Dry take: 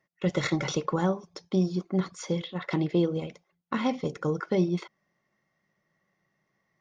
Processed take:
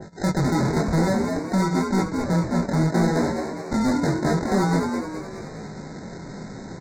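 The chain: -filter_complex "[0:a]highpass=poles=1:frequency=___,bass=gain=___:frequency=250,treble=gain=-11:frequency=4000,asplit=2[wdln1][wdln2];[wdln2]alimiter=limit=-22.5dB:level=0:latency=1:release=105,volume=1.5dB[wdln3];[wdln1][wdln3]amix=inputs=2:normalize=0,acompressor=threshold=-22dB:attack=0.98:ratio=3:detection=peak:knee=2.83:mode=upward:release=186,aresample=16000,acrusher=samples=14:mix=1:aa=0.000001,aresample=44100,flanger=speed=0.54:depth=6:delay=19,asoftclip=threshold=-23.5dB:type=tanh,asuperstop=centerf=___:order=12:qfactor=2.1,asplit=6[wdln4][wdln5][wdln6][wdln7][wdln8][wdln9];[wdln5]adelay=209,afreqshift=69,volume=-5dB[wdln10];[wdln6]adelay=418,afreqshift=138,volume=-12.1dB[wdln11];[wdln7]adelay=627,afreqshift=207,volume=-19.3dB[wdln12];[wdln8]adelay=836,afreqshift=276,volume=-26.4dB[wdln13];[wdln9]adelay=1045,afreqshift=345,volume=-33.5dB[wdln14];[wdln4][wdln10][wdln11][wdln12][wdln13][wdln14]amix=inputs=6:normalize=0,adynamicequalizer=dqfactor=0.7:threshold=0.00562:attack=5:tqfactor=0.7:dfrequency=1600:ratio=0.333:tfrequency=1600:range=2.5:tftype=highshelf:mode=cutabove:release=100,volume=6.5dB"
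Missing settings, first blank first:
41, 8, 2900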